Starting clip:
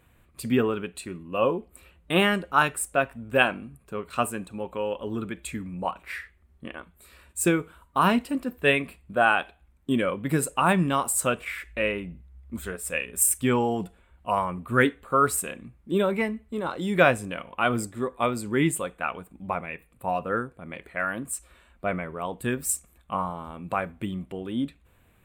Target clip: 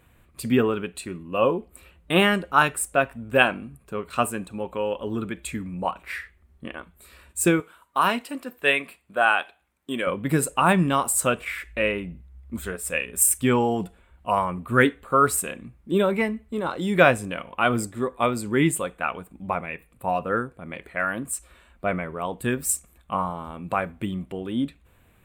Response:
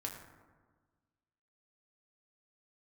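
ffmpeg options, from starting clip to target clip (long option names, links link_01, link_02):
-filter_complex "[0:a]asettb=1/sr,asplit=3[link_01][link_02][link_03];[link_01]atrim=end=7.604[link_04];[link_02]atrim=start=7.6:end=10.07,asetpts=PTS-STARTPTS,afade=type=in:duration=0.004:curve=qsin,afade=type=out:start_time=2.466:duration=0.004:curve=qsin,highpass=frequency=660:poles=1[link_05];[link_03]atrim=start=10.066[link_06];[link_04][link_05]acrossfade=duration=0.004:curve1=hsin:curve2=qsin[link_07];[link_07][link_06]acrossfade=duration=0.004:curve1=qsin:curve2=hsin,volume=2.5dB"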